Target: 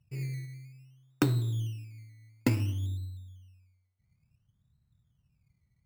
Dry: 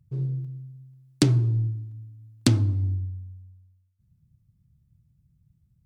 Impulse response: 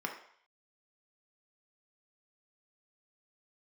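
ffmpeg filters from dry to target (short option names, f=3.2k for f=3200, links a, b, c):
-filter_complex "[0:a]acrusher=samples=16:mix=1:aa=0.000001:lfo=1:lforange=9.6:lforate=0.57,asplit=2[a][b];[1:a]atrim=start_sample=2205[c];[b][c]afir=irnorm=-1:irlink=0,volume=-13dB[d];[a][d]amix=inputs=2:normalize=0,volume=-7dB"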